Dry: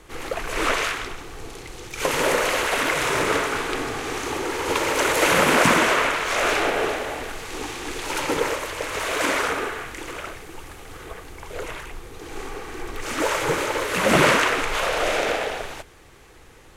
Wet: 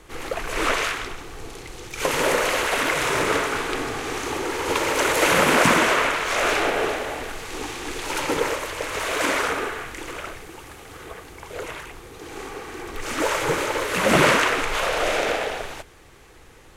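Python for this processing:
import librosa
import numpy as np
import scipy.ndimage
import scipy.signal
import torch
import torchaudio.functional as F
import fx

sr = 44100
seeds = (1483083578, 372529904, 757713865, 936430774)

y = fx.highpass(x, sr, hz=69.0, slope=6, at=(10.48, 12.95))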